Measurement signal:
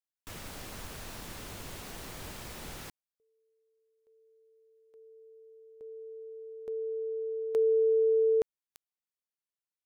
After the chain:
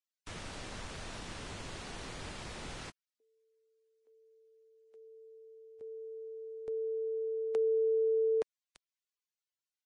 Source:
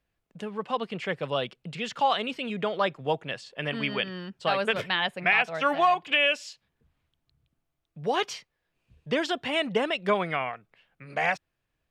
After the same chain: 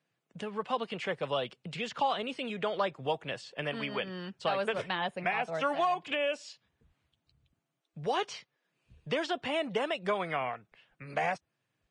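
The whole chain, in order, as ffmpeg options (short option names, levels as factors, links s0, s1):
-filter_complex "[0:a]acrossover=split=450|1100|5700[s0][s1][s2][s3];[s0]acompressor=threshold=0.01:ratio=4[s4];[s1]acompressor=threshold=0.0316:ratio=4[s5];[s2]acompressor=threshold=0.0126:ratio=4[s6];[s3]acompressor=threshold=0.00141:ratio=4[s7];[s4][s5][s6][s7]amix=inputs=4:normalize=0" -ar 22050 -c:a libvorbis -b:a 32k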